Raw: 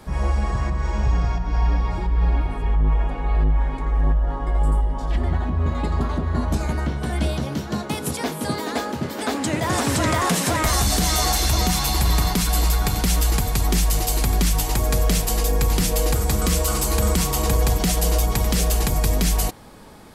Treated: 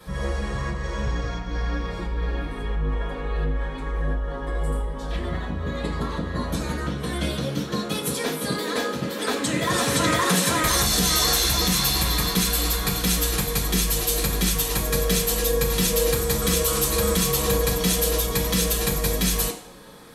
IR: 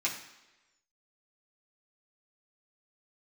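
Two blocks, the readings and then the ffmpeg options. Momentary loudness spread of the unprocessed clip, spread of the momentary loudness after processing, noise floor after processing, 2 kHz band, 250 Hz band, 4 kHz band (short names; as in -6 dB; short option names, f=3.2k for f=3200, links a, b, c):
6 LU, 10 LU, -32 dBFS, +1.5 dB, -1.5 dB, +3.0 dB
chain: -filter_complex "[1:a]atrim=start_sample=2205,asetrate=70560,aresample=44100[a];[0:a][a]afir=irnorm=-1:irlink=0"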